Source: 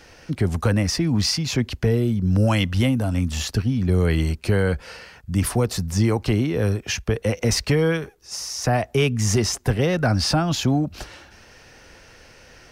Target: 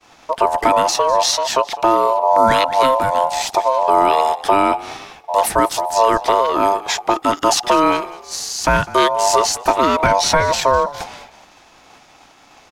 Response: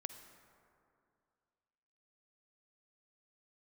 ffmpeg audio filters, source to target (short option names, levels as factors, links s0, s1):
-filter_complex "[0:a]asplit=4[s0][s1][s2][s3];[s1]adelay=201,afreqshift=-45,volume=0.119[s4];[s2]adelay=402,afreqshift=-90,volume=0.0452[s5];[s3]adelay=603,afreqshift=-135,volume=0.0172[s6];[s0][s4][s5][s6]amix=inputs=4:normalize=0,agate=range=0.0224:threshold=0.00794:ratio=3:detection=peak,aeval=exprs='val(0)*sin(2*PI*790*n/s)':c=same,volume=2.51"